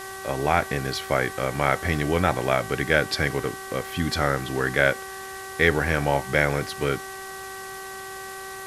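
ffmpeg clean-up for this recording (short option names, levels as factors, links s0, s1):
-af "bandreject=f=384.3:t=h:w=4,bandreject=f=768.6:t=h:w=4,bandreject=f=1152.9:t=h:w=4,bandreject=f=1537.2:t=h:w=4,bandreject=f=1921.5:t=h:w=4,bandreject=f=1100:w=30,afwtdn=0.0089"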